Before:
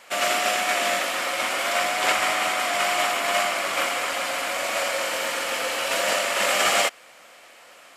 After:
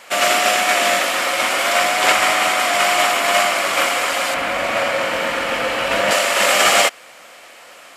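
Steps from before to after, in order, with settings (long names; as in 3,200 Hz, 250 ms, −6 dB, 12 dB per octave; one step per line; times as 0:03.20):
0:04.34–0:06.11: bass and treble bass +10 dB, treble −11 dB
level +7 dB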